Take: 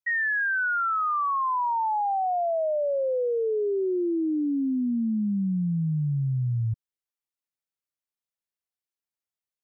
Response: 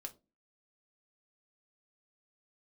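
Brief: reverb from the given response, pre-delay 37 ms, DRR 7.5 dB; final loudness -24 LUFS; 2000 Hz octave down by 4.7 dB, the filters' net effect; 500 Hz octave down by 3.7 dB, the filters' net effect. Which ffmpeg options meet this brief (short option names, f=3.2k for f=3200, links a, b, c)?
-filter_complex "[0:a]equalizer=f=500:t=o:g=-4.5,equalizer=f=2k:t=o:g=-6,asplit=2[a][b];[1:a]atrim=start_sample=2205,adelay=37[c];[b][c]afir=irnorm=-1:irlink=0,volume=-3.5dB[d];[a][d]amix=inputs=2:normalize=0,volume=3.5dB"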